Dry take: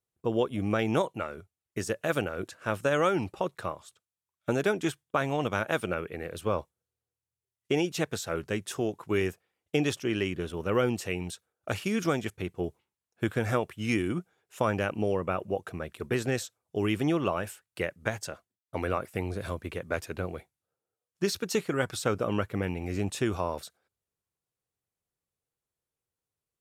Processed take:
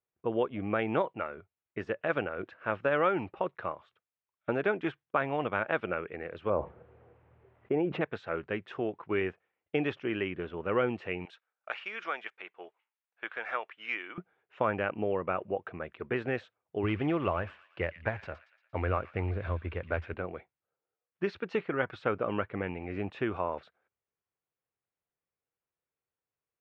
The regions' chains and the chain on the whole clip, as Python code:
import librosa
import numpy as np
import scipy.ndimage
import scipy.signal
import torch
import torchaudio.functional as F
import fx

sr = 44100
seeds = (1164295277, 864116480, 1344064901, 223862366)

y = fx.chain(x, sr, fx.curve_eq(hz=(600.0, 2400.0, 5600.0), db=(0, -13, -28)),
    fx.env_flatten(amount_pct=70), at=(6.5, 8.01))
y = fx.chain(y, sr, fx.highpass(hz=880.0, slope=12),
    fx.high_shelf(hz=6100.0, db=8.5), at=(11.25, 14.18))
y = fx.chain(y, sr, fx.cvsd(bps=64000),
    fx.peak_eq(hz=80.0, db=15.0, octaves=0.83),
    fx.echo_wet_highpass(ms=116, feedback_pct=51, hz=2300.0, wet_db=-11.0), at=(16.83, 20.14))
y = scipy.signal.sosfilt(scipy.signal.butter(4, 2600.0, 'lowpass', fs=sr, output='sos'), y)
y = fx.low_shelf(y, sr, hz=250.0, db=-9.0)